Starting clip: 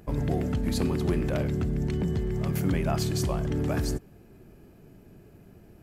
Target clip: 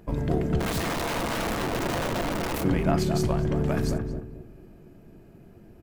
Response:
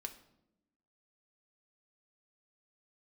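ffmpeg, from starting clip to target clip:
-filter_complex "[0:a]aeval=exprs='0.2*(cos(1*acos(clip(val(0)/0.2,-1,1)))-cos(1*PI/2))+0.0251*(cos(3*acos(clip(val(0)/0.2,-1,1)))-cos(3*PI/2))+0.00708*(cos(4*acos(clip(val(0)/0.2,-1,1)))-cos(4*PI/2))':c=same,asplit=3[s0][s1][s2];[s0]afade=t=out:st=0.59:d=0.02[s3];[s1]aeval=exprs='(mod(26.6*val(0)+1,2)-1)/26.6':c=same,afade=t=in:st=0.59:d=0.02,afade=t=out:st=2.62:d=0.02[s4];[s2]afade=t=in:st=2.62:d=0.02[s5];[s3][s4][s5]amix=inputs=3:normalize=0,asplit=2[s6][s7];[s7]adelay=222,lowpass=f=940:p=1,volume=0.631,asplit=2[s8][s9];[s9]adelay=222,lowpass=f=940:p=1,volume=0.33,asplit=2[s10][s11];[s11]adelay=222,lowpass=f=940:p=1,volume=0.33,asplit=2[s12][s13];[s13]adelay=222,lowpass=f=940:p=1,volume=0.33[s14];[s6][s8][s10][s12][s14]amix=inputs=5:normalize=0,asplit=2[s15][s16];[1:a]atrim=start_sample=2205,atrim=end_sample=3087,highshelf=f=5300:g=-10.5[s17];[s16][s17]afir=irnorm=-1:irlink=0,volume=2.37[s18];[s15][s18]amix=inputs=2:normalize=0,volume=0.668"

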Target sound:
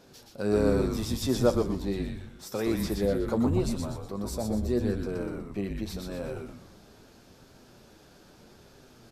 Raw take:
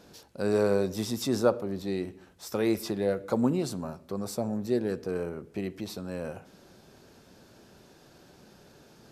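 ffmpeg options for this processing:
-filter_complex "[0:a]asplit=2[s0][s1];[s1]asoftclip=type=tanh:threshold=0.0841,volume=0.447[s2];[s0][s2]amix=inputs=2:normalize=0,flanger=delay=7.4:depth=2.6:regen=59:speed=0.8:shape=triangular,asplit=6[s3][s4][s5][s6][s7][s8];[s4]adelay=122,afreqshift=-140,volume=0.668[s9];[s5]adelay=244,afreqshift=-280,volume=0.288[s10];[s6]adelay=366,afreqshift=-420,volume=0.123[s11];[s7]adelay=488,afreqshift=-560,volume=0.0531[s12];[s8]adelay=610,afreqshift=-700,volume=0.0229[s13];[s3][s9][s10][s11][s12][s13]amix=inputs=6:normalize=0"

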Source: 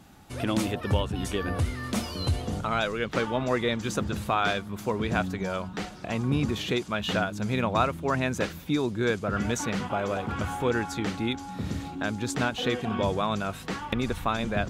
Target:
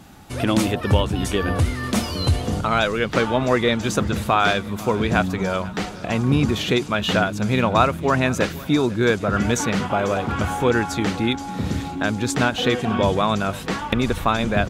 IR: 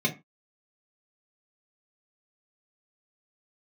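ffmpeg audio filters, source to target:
-af "aecho=1:1:496|992|1488|1984|2480:0.1|0.06|0.036|0.0216|0.013,volume=2.37"

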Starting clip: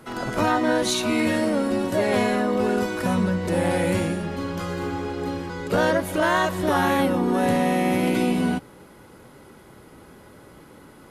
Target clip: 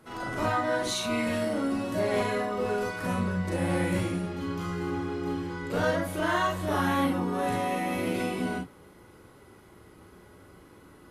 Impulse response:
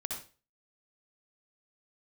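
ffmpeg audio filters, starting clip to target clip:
-filter_complex "[1:a]atrim=start_sample=2205,afade=t=out:st=0.18:d=0.01,atrim=end_sample=8379,asetrate=74970,aresample=44100[s0];[0:a][s0]afir=irnorm=-1:irlink=0,volume=0.75"

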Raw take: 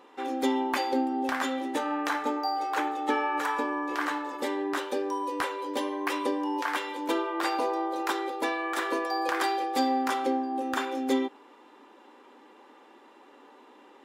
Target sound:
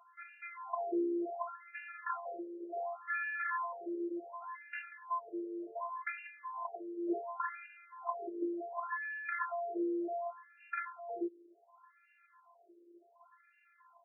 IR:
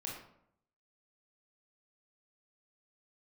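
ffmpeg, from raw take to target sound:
-af "afftfilt=real='hypot(re,im)*cos(PI*b)':imag='0':win_size=512:overlap=0.75,bandreject=f=60:t=h:w=6,bandreject=f=120:t=h:w=6,bandreject=f=180:t=h:w=6,bandreject=f=240:t=h:w=6,afftfilt=real='re*between(b*sr/1024,400*pow(2000/400,0.5+0.5*sin(2*PI*0.68*pts/sr))/1.41,400*pow(2000/400,0.5+0.5*sin(2*PI*0.68*pts/sr))*1.41)':imag='im*between(b*sr/1024,400*pow(2000/400,0.5+0.5*sin(2*PI*0.68*pts/sr))/1.41,400*pow(2000/400,0.5+0.5*sin(2*PI*0.68*pts/sr))*1.41)':win_size=1024:overlap=0.75"

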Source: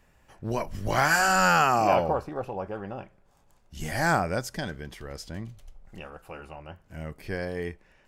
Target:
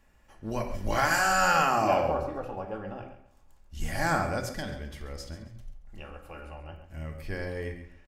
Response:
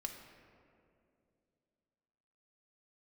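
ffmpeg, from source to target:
-filter_complex "[0:a]asubboost=boost=2:cutoff=130,asettb=1/sr,asplit=3[s0][s1][s2];[s0]atrim=end=5.334[s3];[s1]atrim=start=5.33:end=5.99,asetpts=PTS-STARTPTS,afade=t=in:d=0.004:c=qsin,afade=t=out:st=0.656:d=0.004:c=qsin,acompressor=threshold=0.0112:ratio=4[s4];[s2]atrim=start=5.986[s5];[s3][s4]acrossfade=d=0.004:c1=hsin:c2=qsin[s6];[s6][s5]acrossfade=d=0.004:c1=qsin:c2=hsin,aecho=1:1:136|272|408:0.224|0.056|0.014[s7];[1:a]atrim=start_sample=2205,atrim=end_sample=6174[s8];[s7][s8]afir=irnorm=-1:irlink=0"

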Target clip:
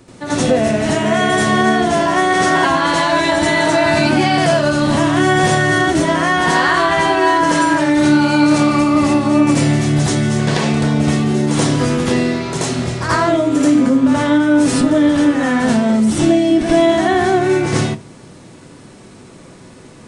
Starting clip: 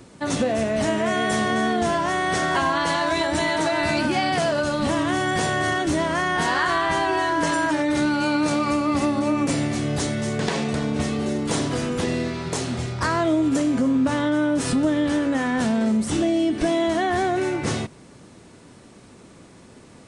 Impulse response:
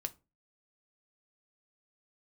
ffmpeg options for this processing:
-filter_complex "[0:a]asplit=2[s0][s1];[1:a]atrim=start_sample=2205,adelay=81[s2];[s1][s2]afir=irnorm=-1:irlink=0,volume=2.37[s3];[s0][s3]amix=inputs=2:normalize=0"

